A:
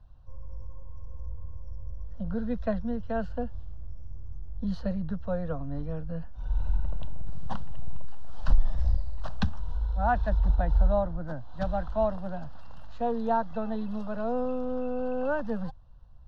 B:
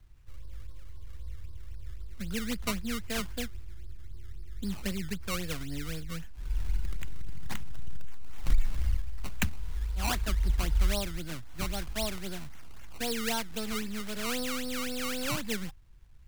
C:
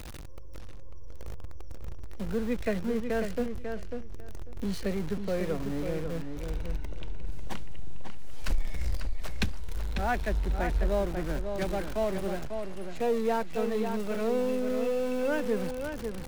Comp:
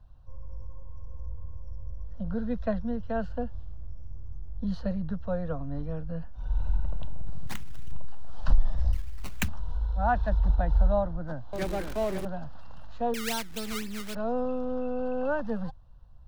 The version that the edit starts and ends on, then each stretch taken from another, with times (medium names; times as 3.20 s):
A
7.47–7.92 s: from B
8.93–9.48 s: from B
11.53–12.25 s: from C
13.14–14.15 s: from B